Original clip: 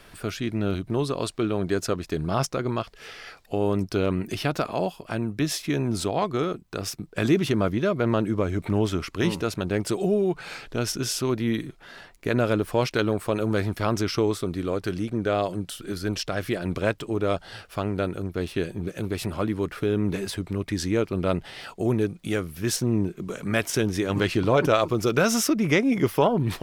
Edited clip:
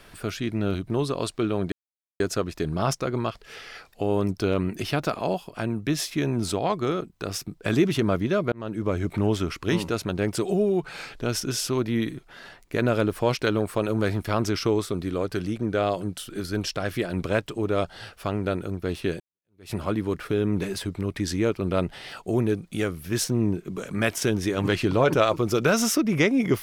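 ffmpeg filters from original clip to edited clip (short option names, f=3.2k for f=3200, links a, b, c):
-filter_complex "[0:a]asplit=4[a][b][c][d];[a]atrim=end=1.72,asetpts=PTS-STARTPTS,afade=t=out:st=1.716:d=0.004:c=hsin,apad=pad_dur=0.48[e];[b]atrim=start=1.72:end=8.04,asetpts=PTS-STARTPTS,afade=t=in:d=0.004:c=hsin,afade=t=out:st=6.316:d=0.004:c=hsin[f];[c]atrim=start=8.04:end=18.72,asetpts=PTS-STARTPTS,afade=t=in:d=0.41,afade=t=out:st=10.676:d=0.004:c=hsin[g];[d]atrim=start=18.72,asetpts=PTS-STARTPTS,afade=t=in:d=0.53:c=exp[h];[e][f][g][h]concat=n=4:v=0:a=1"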